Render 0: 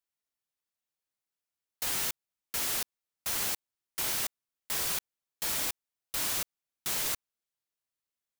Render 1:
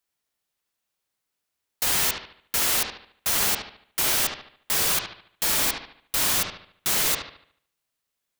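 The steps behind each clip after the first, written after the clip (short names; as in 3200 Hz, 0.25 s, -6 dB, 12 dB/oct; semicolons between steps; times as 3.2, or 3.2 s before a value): analogue delay 73 ms, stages 2048, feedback 41%, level -5 dB; gain +8.5 dB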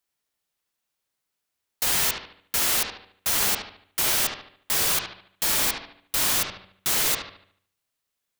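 de-hum 95.5 Hz, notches 30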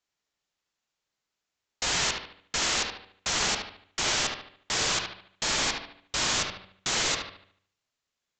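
steep low-pass 7500 Hz 96 dB/oct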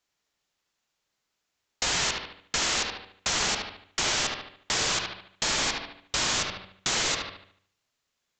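compressor 2:1, threshold -31 dBFS, peak gain reduction 4.5 dB; gain +4.5 dB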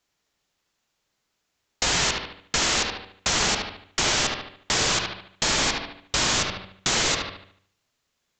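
low shelf 470 Hz +4 dB; gain +3.5 dB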